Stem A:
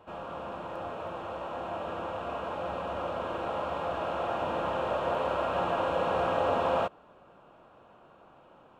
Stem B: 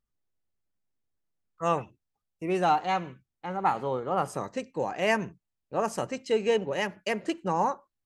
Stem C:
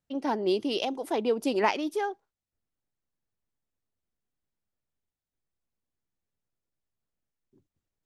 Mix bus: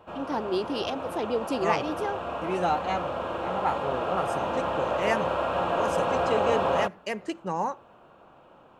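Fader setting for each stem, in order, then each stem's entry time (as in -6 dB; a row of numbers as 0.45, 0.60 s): +2.5, -2.5, -2.0 dB; 0.00, 0.00, 0.05 s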